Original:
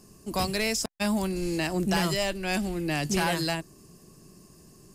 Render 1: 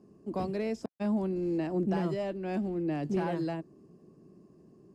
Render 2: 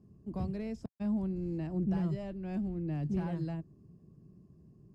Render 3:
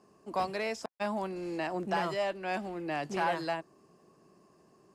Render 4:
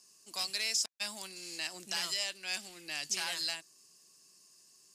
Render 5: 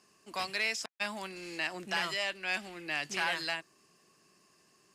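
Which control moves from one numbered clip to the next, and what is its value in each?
band-pass, frequency: 320, 110, 830, 5400, 2100 Hz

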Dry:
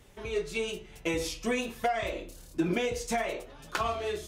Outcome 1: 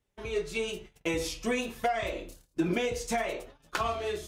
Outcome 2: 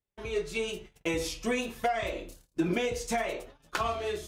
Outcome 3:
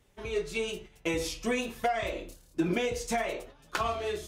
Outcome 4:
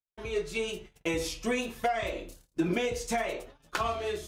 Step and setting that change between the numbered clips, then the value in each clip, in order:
gate, range: -23, -35, -9, -52 dB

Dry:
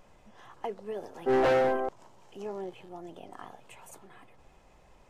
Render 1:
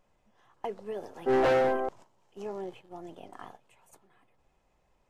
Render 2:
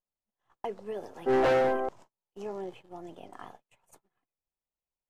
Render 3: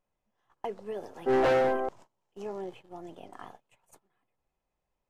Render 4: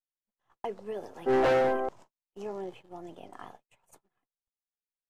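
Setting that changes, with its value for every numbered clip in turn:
gate, range: -12, -41, -25, -55 dB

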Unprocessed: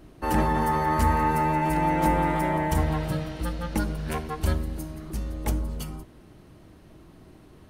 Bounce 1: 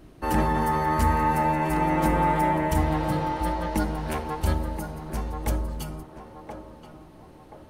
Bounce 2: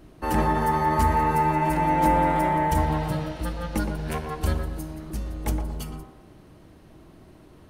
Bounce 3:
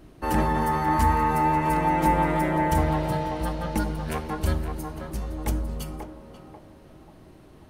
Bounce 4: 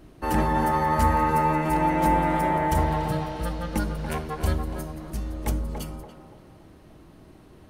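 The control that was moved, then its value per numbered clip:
narrowing echo, time: 1.028, 0.118, 0.538, 0.286 s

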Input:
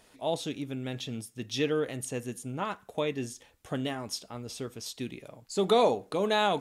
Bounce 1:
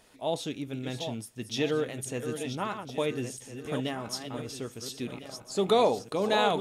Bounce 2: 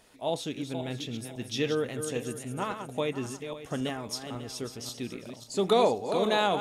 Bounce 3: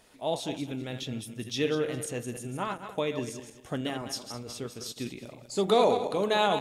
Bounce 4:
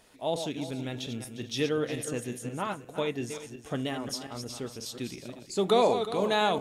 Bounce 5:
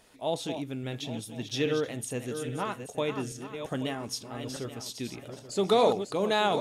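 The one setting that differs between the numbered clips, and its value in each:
regenerating reverse delay, time: 0.678, 0.272, 0.103, 0.178, 0.415 s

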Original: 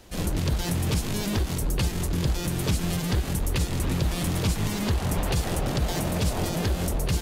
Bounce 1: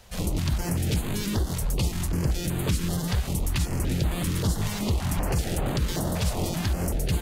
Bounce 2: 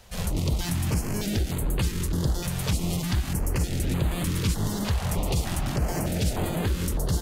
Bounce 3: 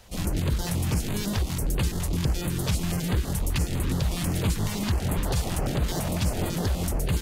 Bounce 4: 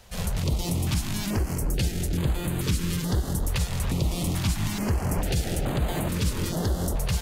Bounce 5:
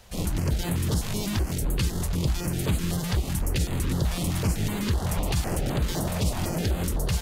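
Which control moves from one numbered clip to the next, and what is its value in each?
stepped notch, rate: 5.2, 3.3, 12, 2.3, 7.9 Hz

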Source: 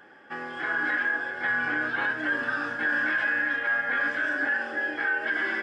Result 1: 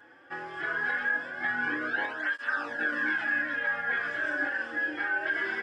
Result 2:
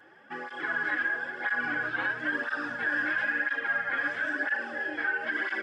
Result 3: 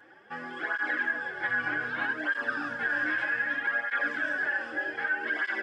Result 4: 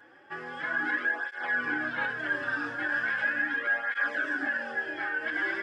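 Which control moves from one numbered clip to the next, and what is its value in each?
tape flanging out of phase, nulls at: 0.21, 1, 0.64, 0.38 Hz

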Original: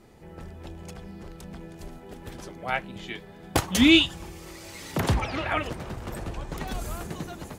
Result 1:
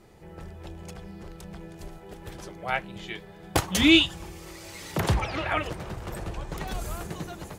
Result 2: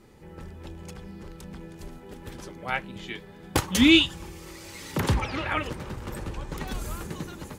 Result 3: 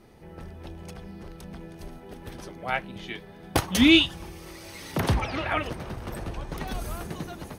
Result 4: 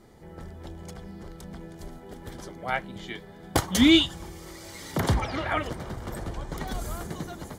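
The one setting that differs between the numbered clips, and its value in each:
notch, frequency: 250, 690, 7300, 2600 Hz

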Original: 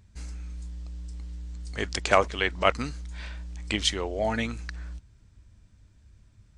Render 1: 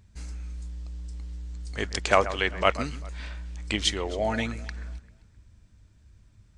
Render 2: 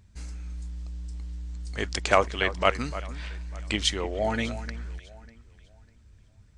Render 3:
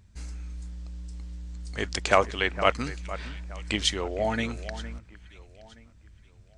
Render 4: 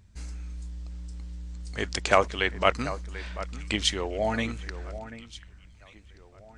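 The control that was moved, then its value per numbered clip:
echo with dull and thin repeats by turns, time: 0.131, 0.299, 0.461, 0.739 s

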